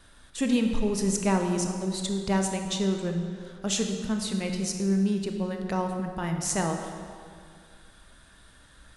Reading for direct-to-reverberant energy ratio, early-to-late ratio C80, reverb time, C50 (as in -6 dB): 3.5 dB, 6.0 dB, 2.2 s, 5.0 dB